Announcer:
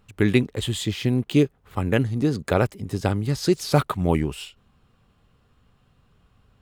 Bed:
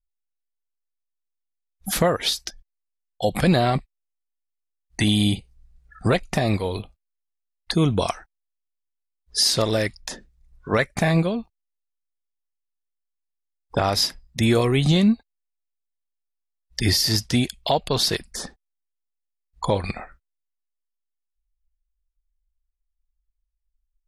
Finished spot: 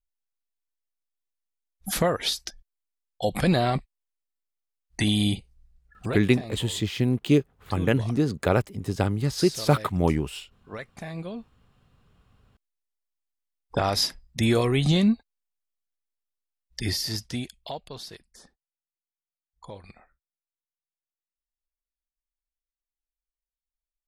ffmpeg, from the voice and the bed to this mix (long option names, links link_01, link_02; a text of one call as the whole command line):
ffmpeg -i stem1.wav -i stem2.wav -filter_complex "[0:a]adelay=5950,volume=-1.5dB[link_01];[1:a]volume=10.5dB,afade=type=out:start_time=5.49:duration=0.9:silence=0.211349,afade=type=in:start_time=11.17:duration=0.57:silence=0.199526,afade=type=out:start_time=15.75:duration=2.32:silence=0.141254[link_02];[link_01][link_02]amix=inputs=2:normalize=0" out.wav